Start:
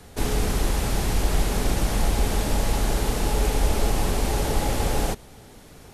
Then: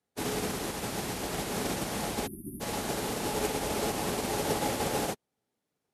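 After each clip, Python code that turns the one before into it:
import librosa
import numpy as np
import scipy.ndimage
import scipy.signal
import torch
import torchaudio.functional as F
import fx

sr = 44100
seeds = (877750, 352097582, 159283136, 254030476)

y = scipy.signal.sosfilt(scipy.signal.butter(2, 160.0, 'highpass', fs=sr, output='sos'), x)
y = fx.spec_erase(y, sr, start_s=2.27, length_s=0.34, low_hz=390.0, high_hz=9300.0)
y = fx.upward_expand(y, sr, threshold_db=-49.0, expansion=2.5)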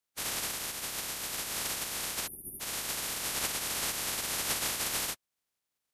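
y = fx.spec_clip(x, sr, under_db=28)
y = y * 10.0 ** (-2.5 / 20.0)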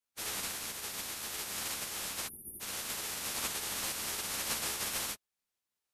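y = fx.ensemble(x, sr)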